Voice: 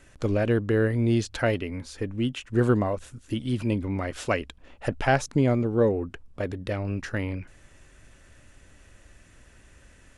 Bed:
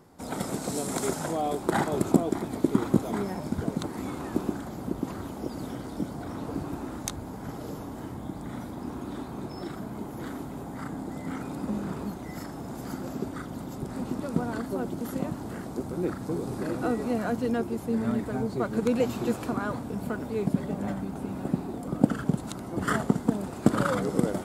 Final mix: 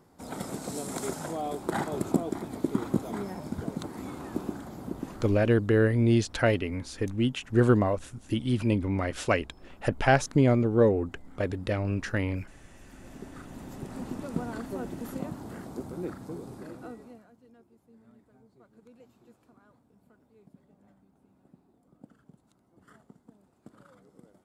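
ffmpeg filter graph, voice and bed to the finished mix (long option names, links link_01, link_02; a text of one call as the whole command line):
ffmpeg -i stem1.wav -i stem2.wav -filter_complex "[0:a]adelay=5000,volume=0.5dB[link_01];[1:a]volume=11dB,afade=type=out:start_time=4.95:duration=0.64:silence=0.16788,afade=type=in:start_time=12.88:duration=0.96:silence=0.16788,afade=type=out:start_time=15.79:duration=1.48:silence=0.0501187[link_02];[link_01][link_02]amix=inputs=2:normalize=0" out.wav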